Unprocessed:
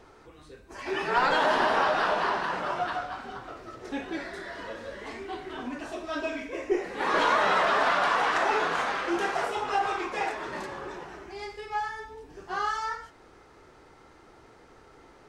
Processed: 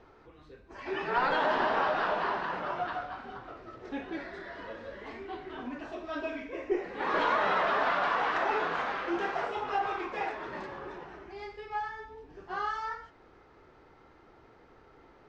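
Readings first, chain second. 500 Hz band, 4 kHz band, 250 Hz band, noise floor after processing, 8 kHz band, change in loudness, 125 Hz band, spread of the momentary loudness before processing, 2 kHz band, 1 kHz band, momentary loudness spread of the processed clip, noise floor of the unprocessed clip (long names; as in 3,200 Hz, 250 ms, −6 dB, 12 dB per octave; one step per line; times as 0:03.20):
−3.5 dB, −7.0 dB, −3.5 dB, −58 dBFS, below −10 dB, −4.0 dB, −3.0 dB, 17 LU, −4.5 dB, −4.0 dB, 17 LU, −55 dBFS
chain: high-frequency loss of the air 170 metres
level −3 dB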